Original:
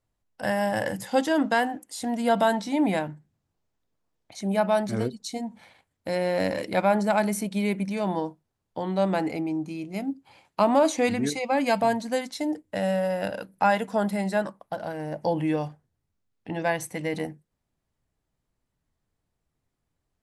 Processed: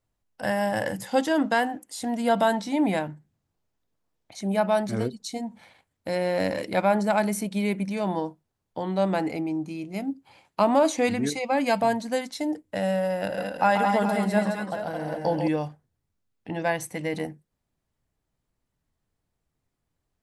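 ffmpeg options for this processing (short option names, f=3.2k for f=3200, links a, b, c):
-filter_complex "[0:a]asettb=1/sr,asplit=3[a][b][c];[a]atrim=end=13.164[d];[b]atrim=start=13.16:end=15.48,asetpts=PTS-STARTPTS,afade=t=in:d=0.004:c=qsin,afade=t=out:st=2.316:d=0.004:c=qsin,aecho=1:1:135|215|219|418:0.473|0.447|0.473|0.316,atrim=end_sample=102312[e];[c]atrim=start=15.476[f];[d][e]acrossfade=d=0.004:c1=hsin:c2=qsin[g];[g][f]acrossfade=d=0.004:c1=qsin:c2=hsin"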